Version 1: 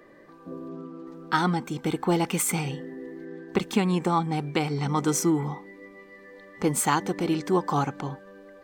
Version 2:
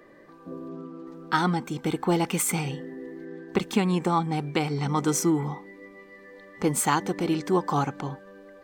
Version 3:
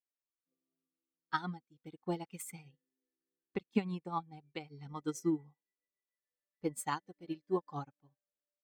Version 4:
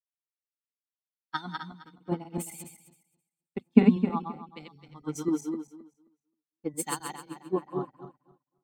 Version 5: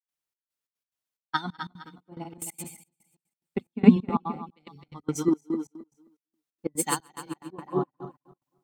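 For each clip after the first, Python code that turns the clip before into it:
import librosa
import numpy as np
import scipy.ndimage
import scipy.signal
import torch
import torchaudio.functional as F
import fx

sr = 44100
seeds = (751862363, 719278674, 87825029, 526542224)

y1 = x
y2 = fx.bin_expand(y1, sr, power=1.5)
y2 = fx.upward_expand(y2, sr, threshold_db=-46.0, expansion=2.5)
y2 = y2 * 10.0 ** (-5.0 / 20.0)
y3 = fx.reverse_delay_fb(y2, sr, ms=132, feedback_pct=62, wet_db=-2.5)
y3 = fx.small_body(y3, sr, hz=(240.0, 3600.0), ring_ms=90, db=11)
y3 = fx.band_widen(y3, sr, depth_pct=100)
y4 = fx.step_gate(y3, sr, bpm=180, pattern='.xxx..xx.x', floor_db=-24.0, edge_ms=4.5)
y4 = y4 * 10.0 ** (5.5 / 20.0)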